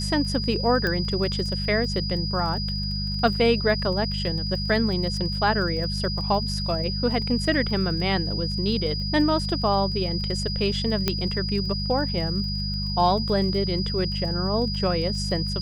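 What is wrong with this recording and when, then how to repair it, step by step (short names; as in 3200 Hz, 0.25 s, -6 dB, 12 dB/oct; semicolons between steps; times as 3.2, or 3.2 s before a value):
crackle 26/s -33 dBFS
hum 50 Hz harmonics 4 -29 dBFS
tone 4900 Hz -30 dBFS
0.87 pop -13 dBFS
11.08 pop -7 dBFS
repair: de-click; notch 4900 Hz, Q 30; de-hum 50 Hz, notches 4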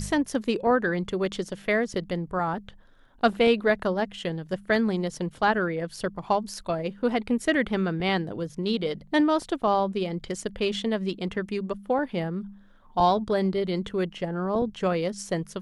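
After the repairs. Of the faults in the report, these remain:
none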